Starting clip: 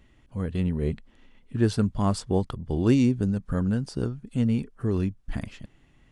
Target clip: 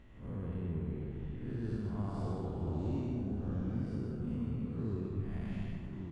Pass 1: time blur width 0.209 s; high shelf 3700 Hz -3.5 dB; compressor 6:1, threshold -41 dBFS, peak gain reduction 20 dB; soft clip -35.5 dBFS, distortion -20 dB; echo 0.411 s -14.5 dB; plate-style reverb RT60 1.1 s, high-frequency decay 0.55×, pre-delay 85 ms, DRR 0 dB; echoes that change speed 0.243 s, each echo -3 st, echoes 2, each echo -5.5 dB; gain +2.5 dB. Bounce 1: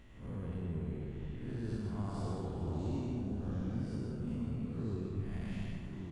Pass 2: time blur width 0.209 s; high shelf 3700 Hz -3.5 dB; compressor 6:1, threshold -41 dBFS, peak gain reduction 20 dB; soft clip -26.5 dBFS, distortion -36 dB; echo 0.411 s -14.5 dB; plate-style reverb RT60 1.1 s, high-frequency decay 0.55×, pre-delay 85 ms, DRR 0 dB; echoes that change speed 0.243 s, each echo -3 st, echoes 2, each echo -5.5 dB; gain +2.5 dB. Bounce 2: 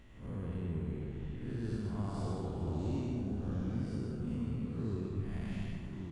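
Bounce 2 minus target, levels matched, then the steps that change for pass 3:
4000 Hz band +5.0 dB
change: high shelf 3700 Hz -14 dB

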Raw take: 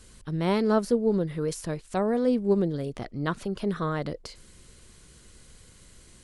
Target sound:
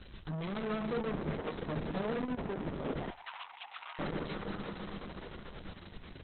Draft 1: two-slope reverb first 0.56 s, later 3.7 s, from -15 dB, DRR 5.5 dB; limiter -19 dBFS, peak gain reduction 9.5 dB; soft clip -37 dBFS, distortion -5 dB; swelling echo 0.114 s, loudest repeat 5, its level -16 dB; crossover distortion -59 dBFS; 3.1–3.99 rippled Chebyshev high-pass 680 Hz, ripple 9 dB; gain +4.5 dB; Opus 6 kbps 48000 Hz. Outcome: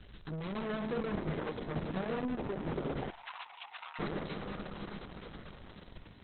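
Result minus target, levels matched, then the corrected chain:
crossover distortion: distortion +8 dB
two-slope reverb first 0.56 s, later 3.7 s, from -15 dB, DRR 5.5 dB; limiter -19 dBFS, peak gain reduction 9.5 dB; soft clip -37 dBFS, distortion -5 dB; swelling echo 0.114 s, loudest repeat 5, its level -16 dB; crossover distortion -67.5 dBFS; 3.1–3.99 rippled Chebyshev high-pass 680 Hz, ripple 9 dB; gain +4.5 dB; Opus 6 kbps 48000 Hz

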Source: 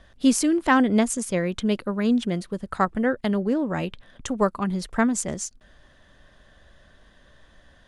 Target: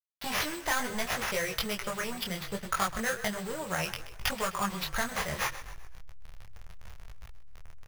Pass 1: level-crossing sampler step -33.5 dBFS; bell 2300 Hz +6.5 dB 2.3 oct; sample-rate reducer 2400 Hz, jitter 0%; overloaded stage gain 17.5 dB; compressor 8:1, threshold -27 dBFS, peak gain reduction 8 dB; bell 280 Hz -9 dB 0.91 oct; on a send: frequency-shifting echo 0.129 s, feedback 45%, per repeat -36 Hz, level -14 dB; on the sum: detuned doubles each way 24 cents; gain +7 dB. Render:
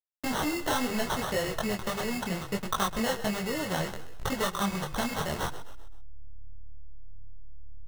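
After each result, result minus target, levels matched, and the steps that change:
250 Hz band +5.5 dB; sample-rate reducer: distortion +7 dB; level-crossing sampler: distortion +7 dB
change: second bell 280 Hz -20.5 dB 0.91 oct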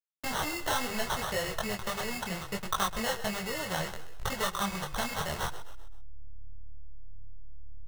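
sample-rate reducer: distortion +7 dB; level-crossing sampler: distortion +7 dB
change: sample-rate reducer 8100 Hz, jitter 0%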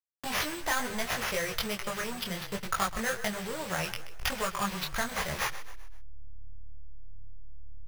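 level-crossing sampler: distortion +7 dB
change: level-crossing sampler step -40.5 dBFS

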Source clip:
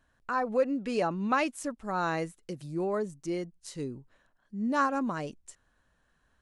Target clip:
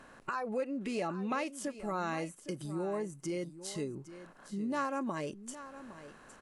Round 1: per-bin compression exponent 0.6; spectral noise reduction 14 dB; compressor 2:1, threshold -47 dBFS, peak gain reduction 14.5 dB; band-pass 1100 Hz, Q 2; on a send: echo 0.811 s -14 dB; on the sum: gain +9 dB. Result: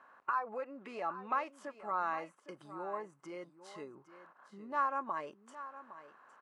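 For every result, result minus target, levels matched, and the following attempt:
1000 Hz band +5.0 dB; compressor: peak gain reduction -4.5 dB
per-bin compression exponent 0.6; spectral noise reduction 14 dB; compressor 2:1, threshold -47 dBFS, peak gain reduction 14.5 dB; on a send: echo 0.811 s -14 dB; on the sum: gain +9 dB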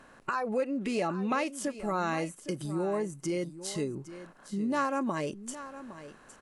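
compressor: peak gain reduction -4.5 dB
per-bin compression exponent 0.6; spectral noise reduction 14 dB; compressor 2:1, threshold -56.5 dBFS, peak gain reduction 19.5 dB; on a send: echo 0.811 s -14 dB; on the sum: gain +9 dB

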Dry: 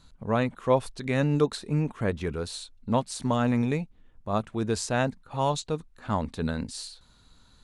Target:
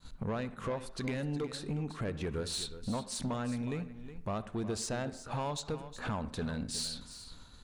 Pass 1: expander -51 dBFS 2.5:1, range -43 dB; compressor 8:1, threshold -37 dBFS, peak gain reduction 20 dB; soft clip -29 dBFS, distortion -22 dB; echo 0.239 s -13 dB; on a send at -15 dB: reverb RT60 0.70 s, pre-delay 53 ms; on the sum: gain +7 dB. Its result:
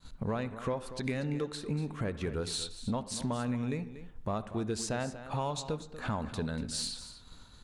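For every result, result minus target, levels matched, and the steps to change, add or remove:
echo 0.127 s early; soft clip: distortion -9 dB
change: echo 0.366 s -13 dB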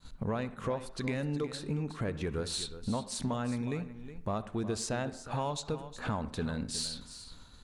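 soft clip: distortion -9 dB
change: soft clip -35.5 dBFS, distortion -13 dB

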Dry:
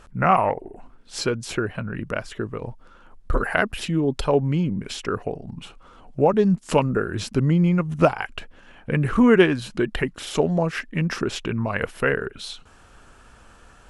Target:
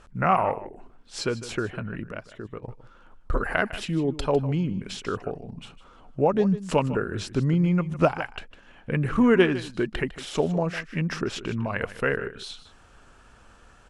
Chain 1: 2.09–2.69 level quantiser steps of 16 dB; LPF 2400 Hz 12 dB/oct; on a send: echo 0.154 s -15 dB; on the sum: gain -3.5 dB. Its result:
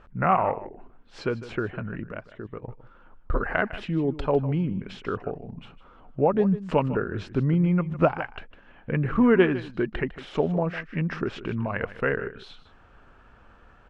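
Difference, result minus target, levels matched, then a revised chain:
8000 Hz band -18.0 dB
2.09–2.69 level quantiser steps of 16 dB; LPF 9300 Hz 12 dB/oct; on a send: echo 0.154 s -15 dB; on the sum: gain -3.5 dB

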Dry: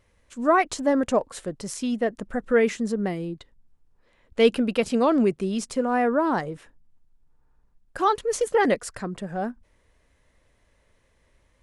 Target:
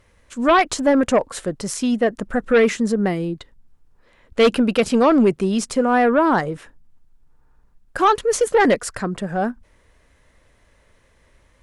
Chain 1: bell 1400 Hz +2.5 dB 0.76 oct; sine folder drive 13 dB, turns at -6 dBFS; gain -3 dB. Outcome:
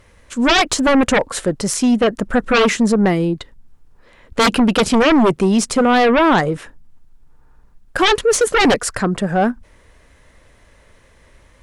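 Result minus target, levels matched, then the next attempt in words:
sine folder: distortion +14 dB
bell 1400 Hz +2.5 dB 0.76 oct; sine folder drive 6 dB, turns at -6 dBFS; gain -3 dB

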